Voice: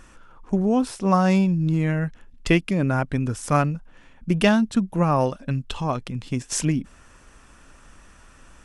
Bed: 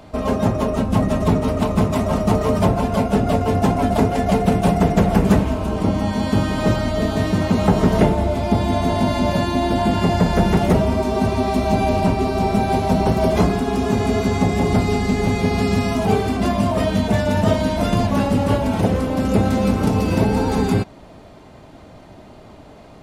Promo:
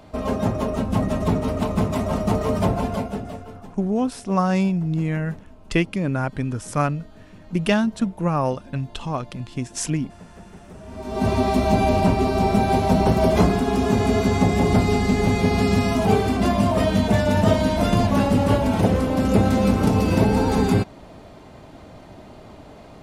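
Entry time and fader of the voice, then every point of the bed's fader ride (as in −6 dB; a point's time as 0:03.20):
3.25 s, −1.5 dB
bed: 0:02.87 −4 dB
0:03.76 −27.5 dB
0:10.74 −27.5 dB
0:11.28 −0.5 dB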